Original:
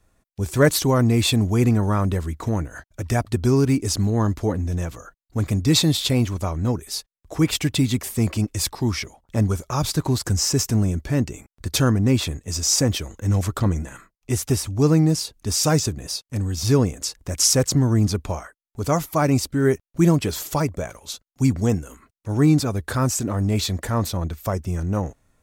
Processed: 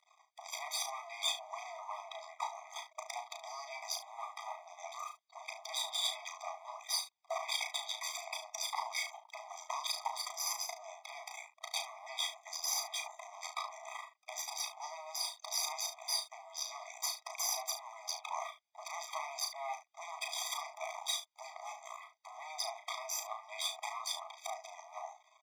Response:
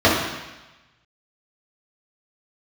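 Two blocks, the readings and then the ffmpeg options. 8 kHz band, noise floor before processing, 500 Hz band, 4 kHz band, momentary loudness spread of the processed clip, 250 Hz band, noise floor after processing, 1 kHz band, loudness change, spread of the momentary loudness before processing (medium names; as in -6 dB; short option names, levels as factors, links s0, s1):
-13.0 dB, under -85 dBFS, -23.5 dB, -10.5 dB, 12 LU, under -40 dB, -70 dBFS, -9.5 dB, -18.0 dB, 11 LU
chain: -filter_complex "[0:a]lowpass=5400,bass=f=250:g=8,treble=f=4000:g=2,acrossover=split=320|1400[s0][s1][s2];[s0]acompressor=threshold=0.141:ratio=4[s3];[s1]acompressor=threshold=0.0631:ratio=4[s4];[s2]acompressor=threshold=0.0282:ratio=4[s5];[s3][s4][s5]amix=inputs=3:normalize=0,alimiter=limit=0.112:level=0:latency=1:release=14,acompressor=threshold=0.0282:ratio=6,aresample=16000,asoftclip=type=tanh:threshold=0.0282,aresample=44100,flanger=delay=0.5:depth=2.2:regen=30:speed=0.58:shape=triangular,aeval=exprs='max(val(0),0)':c=same,asplit=2[s6][s7];[s7]aecho=0:1:35|72:0.531|0.224[s8];[s6][s8]amix=inputs=2:normalize=0,afftfilt=real='re*eq(mod(floor(b*sr/1024/640),2),1)':imag='im*eq(mod(floor(b*sr/1024/640),2),1)':win_size=1024:overlap=0.75,volume=5.31"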